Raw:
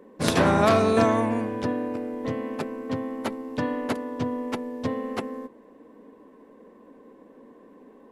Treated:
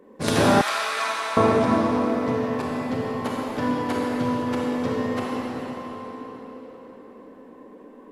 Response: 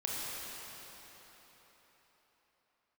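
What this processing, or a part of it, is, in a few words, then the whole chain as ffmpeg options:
cathedral: -filter_complex "[1:a]atrim=start_sample=2205[s0];[0:a][s0]afir=irnorm=-1:irlink=0,asettb=1/sr,asplit=3[s1][s2][s3];[s1]atrim=end=0.614[s4];[s2]atrim=start=0.61:end=1.37,asetpts=PTS-STARTPTS,afade=t=in:d=0.004:c=qsin,afade=t=out:st=0.756:d=0.004:c=qsin,highpass=1500[s5];[s3]atrim=start=1.366[s6];[s4][s5]acrossfade=d=0.004:c1=hsin:c2=qsin[s7];[s7][s6]acrossfade=d=0.004:c1=qsin:c2=hsin"

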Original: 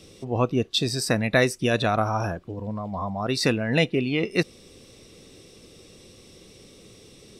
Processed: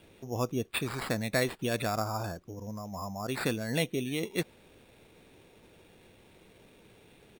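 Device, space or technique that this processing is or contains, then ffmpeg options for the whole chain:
crushed at another speed: -af "asetrate=35280,aresample=44100,acrusher=samples=9:mix=1:aa=0.000001,asetrate=55125,aresample=44100,volume=0.376"

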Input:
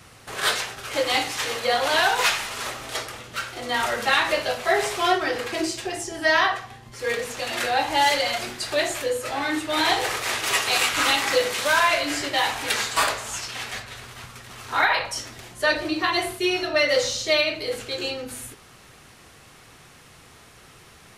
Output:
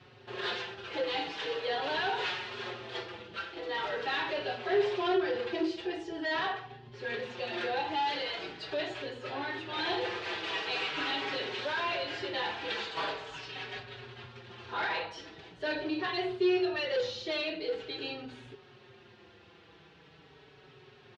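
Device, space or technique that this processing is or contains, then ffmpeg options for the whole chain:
barber-pole flanger into a guitar amplifier: -filter_complex "[0:a]asplit=2[s0][s1];[s1]adelay=5,afreqshift=-0.43[s2];[s0][s2]amix=inputs=2:normalize=1,asoftclip=type=tanh:threshold=0.0668,highpass=99,equalizer=f=250:t=q:w=4:g=-4,equalizer=f=390:t=q:w=4:g=8,equalizer=f=630:t=q:w=4:g=-4,equalizer=f=1200:t=q:w=4:g=-7,equalizer=f=2100:t=q:w=4:g=-6,lowpass=f=3800:w=0.5412,lowpass=f=3800:w=1.3066,volume=0.794"

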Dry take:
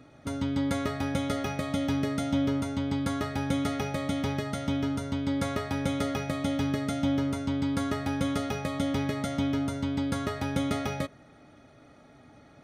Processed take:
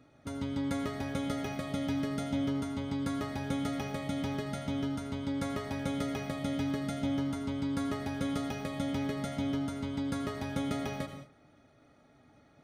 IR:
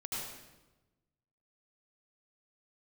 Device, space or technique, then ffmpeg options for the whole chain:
keyed gated reverb: -filter_complex "[0:a]asplit=3[s0][s1][s2];[1:a]atrim=start_sample=2205[s3];[s1][s3]afir=irnorm=-1:irlink=0[s4];[s2]apad=whole_len=557245[s5];[s4][s5]sidechaingate=range=0.0224:threshold=0.00282:ratio=16:detection=peak,volume=0.501[s6];[s0][s6]amix=inputs=2:normalize=0,volume=0.398"

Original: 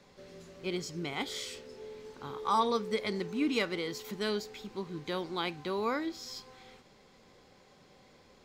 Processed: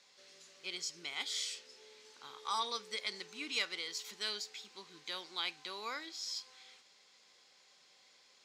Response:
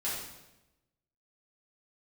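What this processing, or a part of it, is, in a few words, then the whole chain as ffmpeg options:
piezo pickup straight into a mixer: -af "lowpass=6100,aderivative,volume=2.51"

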